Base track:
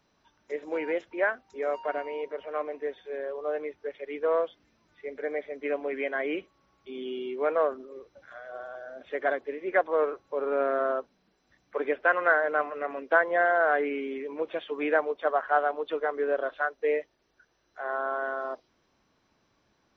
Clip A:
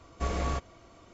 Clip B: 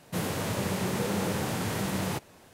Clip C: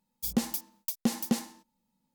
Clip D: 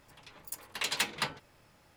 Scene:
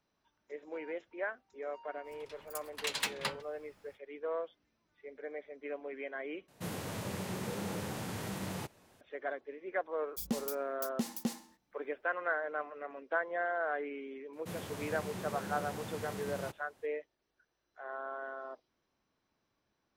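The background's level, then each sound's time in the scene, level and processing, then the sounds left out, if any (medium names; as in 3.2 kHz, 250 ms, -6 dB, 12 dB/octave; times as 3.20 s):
base track -11 dB
2.03 s: add D -3.5 dB, fades 0.05 s
6.48 s: replace with B -9 dB
9.94 s: add C -7.5 dB
14.33 s: add B -12.5 dB
not used: A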